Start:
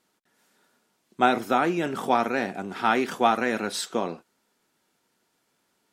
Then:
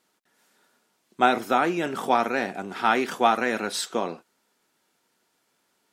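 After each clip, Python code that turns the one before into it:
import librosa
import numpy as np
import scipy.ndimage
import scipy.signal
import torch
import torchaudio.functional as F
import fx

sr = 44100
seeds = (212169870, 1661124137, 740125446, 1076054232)

y = fx.low_shelf(x, sr, hz=240.0, db=-6.0)
y = F.gain(torch.from_numpy(y), 1.5).numpy()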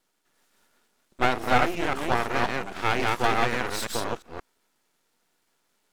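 y = fx.reverse_delay(x, sr, ms=176, wet_db=-1.0)
y = np.maximum(y, 0.0)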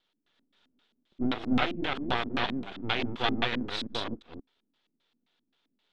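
y = fx.filter_lfo_lowpass(x, sr, shape='square', hz=3.8, low_hz=260.0, high_hz=3500.0, q=4.3)
y = F.gain(torch.from_numpy(y), -6.0).numpy()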